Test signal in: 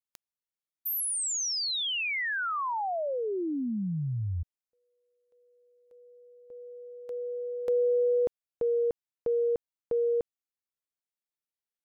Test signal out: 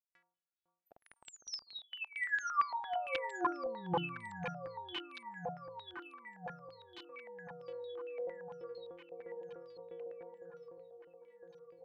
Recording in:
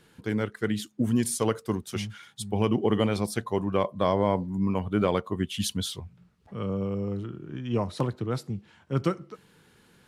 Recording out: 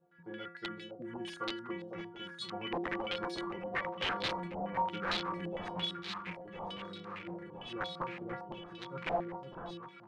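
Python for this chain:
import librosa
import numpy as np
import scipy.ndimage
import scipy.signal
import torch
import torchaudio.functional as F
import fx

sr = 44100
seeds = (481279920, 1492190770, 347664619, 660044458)

y = fx.highpass(x, sr, hz=110.0, slope=6)
y = fx.stiff_resonator(y, sr, f0_hz=170.0, decay_s=0.6, stiffness=0.008)
y = (np.mod(10.0 ** (36.0 / 20.0) * y + 1.0, 2.0) - 1.0) / 10.0 ** (36.0 / 20.0)
y = fx.echo_alternate(y, sr, ms=505, hz=1000.0, feedback_pct=79, wet_db=-5)
y = fx.filter_held_lowpass(y, sr, hz=8.8, low_hz=710.0, high_hz=3900.0)
y = y * librosa.db_to_amplitude(4.0)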